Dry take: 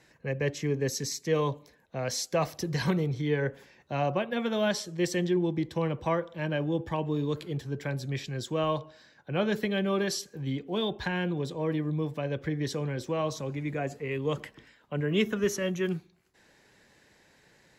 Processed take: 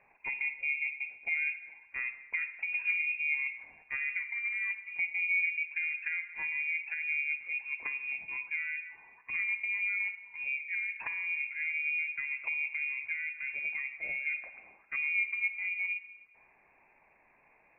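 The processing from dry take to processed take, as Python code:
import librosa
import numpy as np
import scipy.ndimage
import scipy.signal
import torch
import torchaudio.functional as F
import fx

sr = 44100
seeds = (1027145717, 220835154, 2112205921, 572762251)

y = fx.env_lowpass_down(x, sr, base_hz=440.0, full_db=-27.0)
y = fx.freq_invert(y, sr, carrier_hz=2600)
y = fx.rev_schroeder(y, sr, rt60_s=1.2, comb_ms=38, drr_db=10.5)
y = y * librosa.db_to_amplitude(-3.5)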